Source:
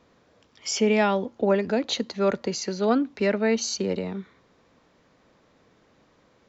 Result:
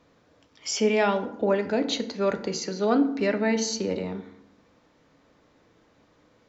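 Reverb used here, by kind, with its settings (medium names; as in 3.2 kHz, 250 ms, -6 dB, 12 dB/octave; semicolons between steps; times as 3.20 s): FDN reverb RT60 0.78 s, low-frequency decay 1.5×, high-frequency decay 0.55×, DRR 7 dB; trim -1.5 dB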